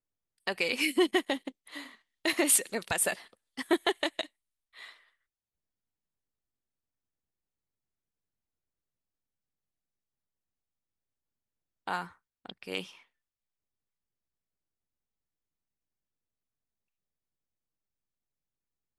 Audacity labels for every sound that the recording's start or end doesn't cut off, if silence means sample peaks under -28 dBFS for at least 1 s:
11.880000	12.790000	sound